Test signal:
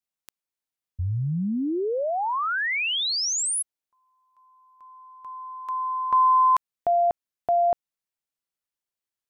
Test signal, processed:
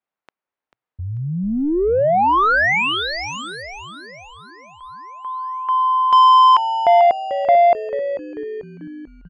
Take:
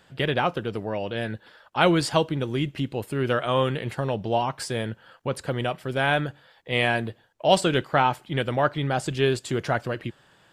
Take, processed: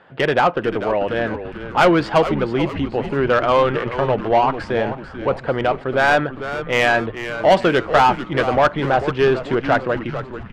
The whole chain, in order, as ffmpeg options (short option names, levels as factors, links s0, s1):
-filter_complex "[0:a]adynamicsmooth=sensitivity=0.5:basefreq=1700,asplit=2[s0][s1];[s1]highpass=f=720:p=1,volume=8.91,asoftclip=type=tanh:threshold=0.562[s2];[s0][s2]amix=inputs=2:normalize=0,lowpass=f=3700:p=1,volume=0.501,asplit=7[s3][s4][s5][s6][s7][s8][s9];[s4]adelay=441,afreqshift=-130,volume=0.282[s10];[s5]adelay=882,afreqshift=-260,volume=0.146[s11];[s6]adelay=1323,afreqshift=-390,volume=0.0759[s12];[s7]adelay=1764,afreqshift=-520,volume=0.0398[s13];[s8]adelay=2205,afreqshift=-650,volume=0.0207[s14];[s9]adelay=2646,afreqshift=-780,volume=0.0107[s15];[s3][s10][s11][s12][s13][s14][s15]amix=inputs=7:normalize=0,volume=1.19"